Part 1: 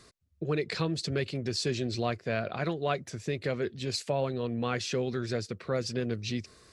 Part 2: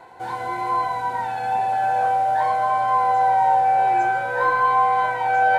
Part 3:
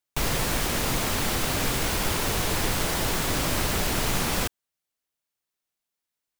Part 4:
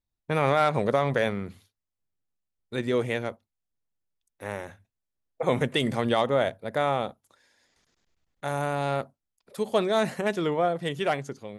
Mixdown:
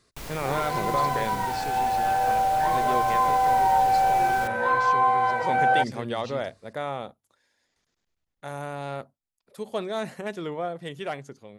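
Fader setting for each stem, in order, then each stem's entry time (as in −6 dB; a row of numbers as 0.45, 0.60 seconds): −8.5, −3.0, −13.0, −6.0 decibels; 0.00, 0.25, 0.00, 0.00 seconds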